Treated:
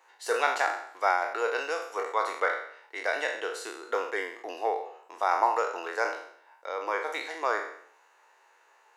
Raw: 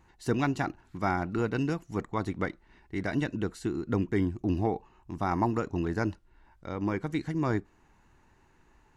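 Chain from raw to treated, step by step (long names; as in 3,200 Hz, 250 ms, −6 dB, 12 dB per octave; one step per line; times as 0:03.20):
peak hold with a decay on every bin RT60 0.63 s
elliptic high-pass filter 480 Hz, stop band 80 dB
level +4.5 dB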